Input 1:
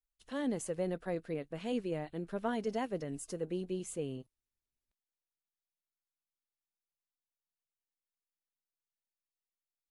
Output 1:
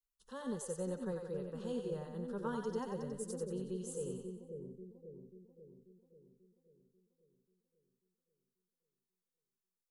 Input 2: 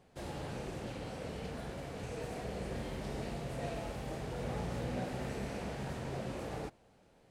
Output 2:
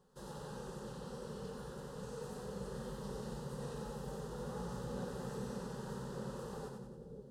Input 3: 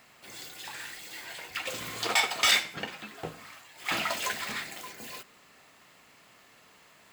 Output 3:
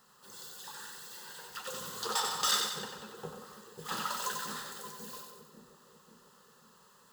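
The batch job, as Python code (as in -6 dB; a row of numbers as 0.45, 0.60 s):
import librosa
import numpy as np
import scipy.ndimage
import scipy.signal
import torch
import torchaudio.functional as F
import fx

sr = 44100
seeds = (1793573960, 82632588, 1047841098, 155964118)

y = fx.fixed_phaser(x, sr, hz=450.0, stages=8)
y = fx.echo_split(y, sr, split_hz=520.0, low_ms=539, high_ms=92, feedback_pct=52, wet_db=-4.5)
y = y * librosa.db_to_amplitude(-2.5)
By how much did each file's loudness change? -4.0, -4.0, -6.0 LU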